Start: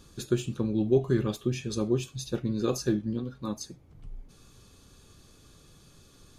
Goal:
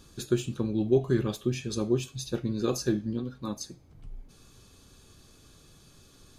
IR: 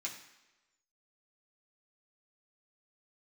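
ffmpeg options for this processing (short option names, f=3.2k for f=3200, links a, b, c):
-filter_complex "[0:a]asplit=2[a][b];[1:a]atrim=start_sample=2205,asetrate=83790,aresample=44100[c];[b][c]afir=irnorm=-1:irlink=0,volume=-6.5dB[d];[a][d]amix=inputs=2:normalize=0"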